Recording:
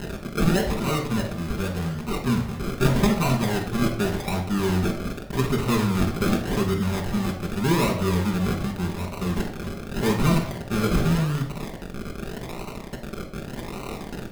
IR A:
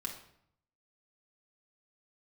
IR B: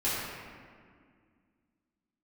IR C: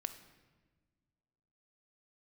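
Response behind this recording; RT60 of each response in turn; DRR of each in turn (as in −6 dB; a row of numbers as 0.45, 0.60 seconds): A; 0.70, 2.0, 1.4 seconds; 0.5, −11.5, 8.5 decibels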